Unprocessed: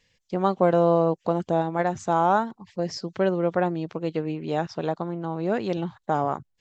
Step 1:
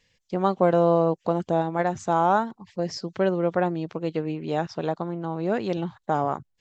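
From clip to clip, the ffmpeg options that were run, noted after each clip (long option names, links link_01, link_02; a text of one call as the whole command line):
ffmpeg -i in.wav -af anull out.wav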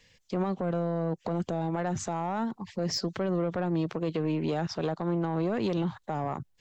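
ffmpeg -i in.wav -filter_complex "[0:a]acrossover=split=230[link_01][link_02];[link_02]acompressor=threshold=-26dB:ratio=6[link_03];[link_01][link_03]amix=inputs=2:normalize=0,alimiter=level_in=0.5dB:limit=-24dB:level=0:latency=1:release=59,volume=-0.5dB,asoftclip=type=tanh:threshold=-26dB,volume=5.5dB" out.wav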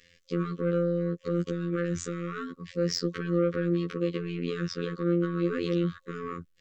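ffmpeg -i in.wav -af "bass=frequency=250:gain=-5,treble=frequency=4000:gain=-4,afftfilt=real='hypot(re,im)*cos(PI*b)':imag='0':win_size=2048:overlap=0.75,afftfilt=real='re*(1-between(b*sr/4096,530,1100))':imag='im*(1-between(b*sr/4096,530,1100))':win_size=4096:overlap=0.75,volume=6dB" out.wav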